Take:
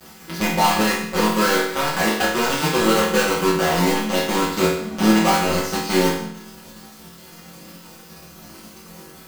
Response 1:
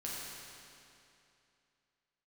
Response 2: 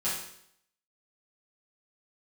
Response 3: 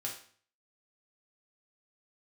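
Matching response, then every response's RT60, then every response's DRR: 2; 2.7 s, 0.70 s, 0.50 s; -6.5 dB, -11.0 dB, -3.0 dB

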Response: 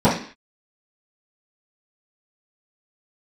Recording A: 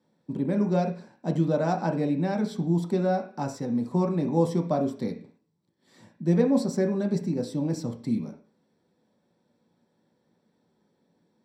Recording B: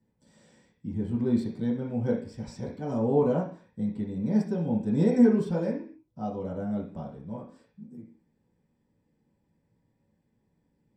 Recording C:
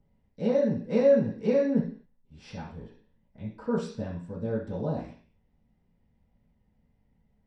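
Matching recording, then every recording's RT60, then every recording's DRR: C; 0.45 s, 0.45 s, 0.45 s; 2.0 dB, -6.5 dB, -15.0 dB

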